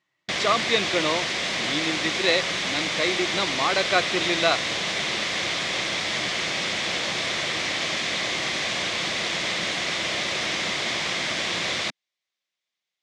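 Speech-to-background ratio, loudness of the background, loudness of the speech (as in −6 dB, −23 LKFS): −1.0 dB, −24.5 LKFS, −25.5 LKFS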